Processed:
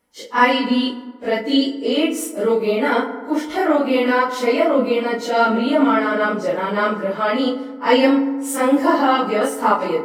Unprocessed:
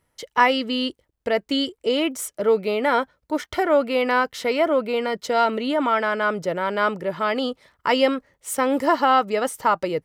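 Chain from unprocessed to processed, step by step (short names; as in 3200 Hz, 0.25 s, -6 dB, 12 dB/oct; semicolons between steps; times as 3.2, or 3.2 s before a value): phase scrambler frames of 0.1 s; resonant low shelf 170 Hz -6.5 dB, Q 3; on a send: reverb RT60 1.5 s, pre-delay 3 ms, DRR 9 dB; on the sum: gain +2 dB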